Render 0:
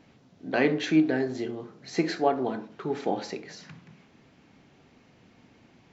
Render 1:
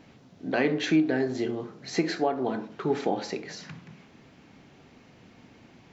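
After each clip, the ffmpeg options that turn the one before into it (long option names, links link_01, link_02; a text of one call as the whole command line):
ffmpeg -i in.wav -af "alimiter=limit=-18dB:level=0:latency=1:release=401,volume=4dB" out.wav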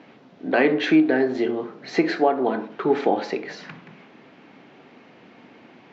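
ffmpeg -i in.wav -af "highpass=250,lowpass=3100,volume=7.5dB" out.wav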